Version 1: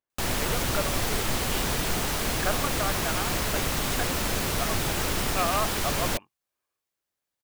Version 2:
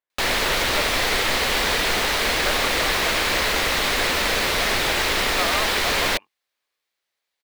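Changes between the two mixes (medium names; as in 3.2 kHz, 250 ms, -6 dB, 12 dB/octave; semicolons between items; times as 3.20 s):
speech -8.0 dB; master: add graphic EQ 125/500/1000/2000/4000 Hz -7/+7/+4/+10/+9 dB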